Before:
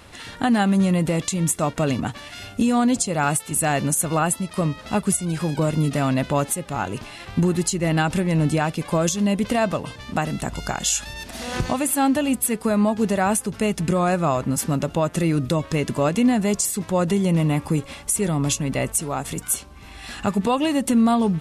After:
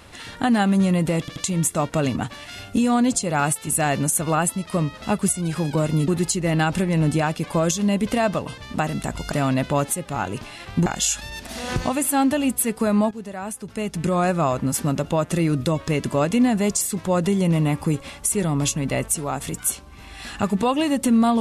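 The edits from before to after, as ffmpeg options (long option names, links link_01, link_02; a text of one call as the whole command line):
ffmpeg -i in.wav -filter_complex "[0:a]asplit=7[link_01][link_02][link_03][link_04][link_05][link_06][link_07];[link_01]atrim=end=1.282[link_08];[link_02]atrim=start=1.198:end=1.282[link_09];[link_03]atrim=start=1.198:end=5.922[link_10];[link_04]atrim=start=7.458:end=10.702[link_11];[link_05]atrim=start=5.918:end=7.462[link_12];[link_06]atrim=start=10.698:end=12.95,asetpts=PTS-STARTPTS,afade=type=out:start_time=2.248:duration=0.004:curve=hsin:silence=0.211349[link_13];[link_07]atrim=start=12.95,asetpts=PTS-STARTPTS,afade=type=in:duration=1.08:curve=qua:silence=0.211349[link_14];[link_08][link_09]acrossfade=duration=0.004:curve1=hsin:curve2=hsin[link_15];[link_15][link_10]acrossfade=duration=0.004:curve1=hsin:curve2=hsin[link_16];[link_16][link_11]acrossfade=duration=0.004:curve1=hsin:curve2=hsin[link_17];[link_17][link_12]acrossfade=duration=0.004:curve1=hsin:curve2=hsin[link_18];[link_13][link_14]concat=n=2:v=0:a=1[link_19];[link_18][link_19]acrossfade=duration=0.004:curve1=hsin:curve2=hsin" out.wav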